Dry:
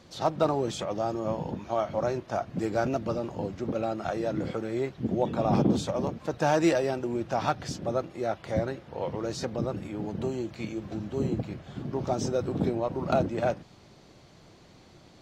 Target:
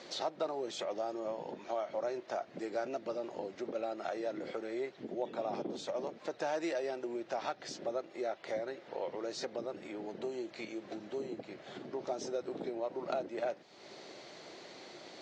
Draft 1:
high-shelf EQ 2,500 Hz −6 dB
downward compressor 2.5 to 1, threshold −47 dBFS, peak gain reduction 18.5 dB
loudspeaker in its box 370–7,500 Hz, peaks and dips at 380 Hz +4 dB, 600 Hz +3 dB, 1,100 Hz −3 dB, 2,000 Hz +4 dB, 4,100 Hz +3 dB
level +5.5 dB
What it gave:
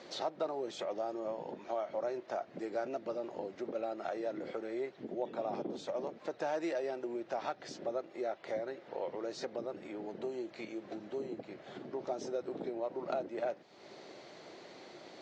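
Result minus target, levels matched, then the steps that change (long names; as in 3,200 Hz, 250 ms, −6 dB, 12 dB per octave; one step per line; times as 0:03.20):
4,000 Hz band −3.5 dB
remove: high-shelf EQ 2,500 Hz −6 dB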